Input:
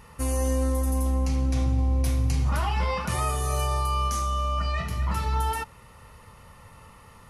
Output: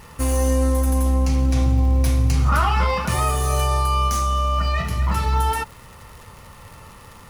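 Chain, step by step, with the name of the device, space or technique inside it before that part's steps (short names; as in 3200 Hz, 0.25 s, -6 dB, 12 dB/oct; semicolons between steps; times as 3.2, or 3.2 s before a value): 2.35–2.87 bell 1300 Hz +13.5 dB 0.28 oct; record under a worn stylus (tracing distortion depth 0.026 ms; crackle 140/s -40 dBFS; pink noise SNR 34 dB); gain +6 dB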